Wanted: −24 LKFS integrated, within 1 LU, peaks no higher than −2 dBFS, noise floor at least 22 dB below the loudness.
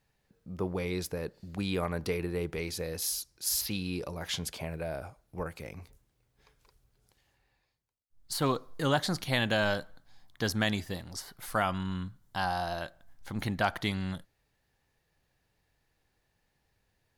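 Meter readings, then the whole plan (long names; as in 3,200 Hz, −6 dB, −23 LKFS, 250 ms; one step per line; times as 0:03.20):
integrated loudness −33.0 LKFS; sample peak −14.0 dBFS; target loudness −24.0 LKFS
→ level +9 dB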